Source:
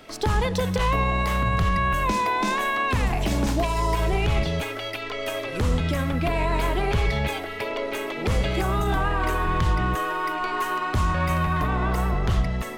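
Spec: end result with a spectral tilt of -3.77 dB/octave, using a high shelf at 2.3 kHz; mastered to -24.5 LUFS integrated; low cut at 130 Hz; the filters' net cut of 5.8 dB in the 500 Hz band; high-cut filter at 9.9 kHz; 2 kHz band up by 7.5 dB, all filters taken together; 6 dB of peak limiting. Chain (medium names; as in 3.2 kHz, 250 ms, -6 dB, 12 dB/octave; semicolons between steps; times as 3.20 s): high-pass 130 Hz; low-pass 9.9 kHz; peaking EQ 500 Hz -8.5 dB; peaking EQ 2 kHz +8 dB; treble shelf 2.3 kHz +4 dB; peak limiter -16 dBFS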